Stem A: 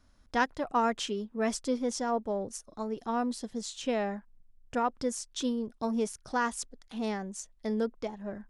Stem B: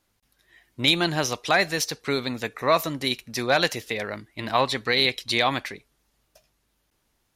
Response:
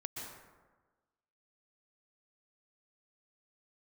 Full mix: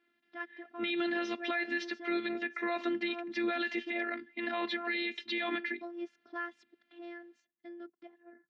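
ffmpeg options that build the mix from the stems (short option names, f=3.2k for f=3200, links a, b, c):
-filter_complex "[0:a]dynaudnorm=f=450:g=9:m=7dB,volume=-10.5dB,asplit=2[a][b];[1:a]volume=2dB[c];[b]apad=whole_len=324504[d];[c][d]sidechaincompress=threshold=-34dB:ratio=8:attack=42:release=249[e];[a][e]amix=inputs=2:normalize=0,afftfilt=real='hypot(re,im)*cos(PI*b)':imag='0':win_size=512:overlap=0.75,highpass=f=180:w=0.5412,highpass=f=180:w=1.3066,equalizer=f=240:t=q:w=4:g=8,equalizer=f=660:t=q:w=4:g=-5,equalizer=f=1k:t=q:w=4:g=-9,equalizer=f=1.8k:t=q:w=4:g=7,lowpass=f=3.2k:w=0.5412,lowpass=f=3.2k:w=1.3066,alimiter=limit=-24dB:level=0:latency=1:release=83"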